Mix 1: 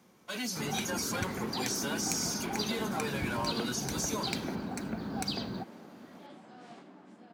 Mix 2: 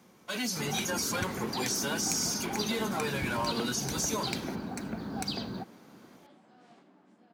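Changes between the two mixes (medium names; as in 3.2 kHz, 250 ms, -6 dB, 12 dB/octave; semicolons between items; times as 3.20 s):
speech +3.0 dB; second sound -7.5 dB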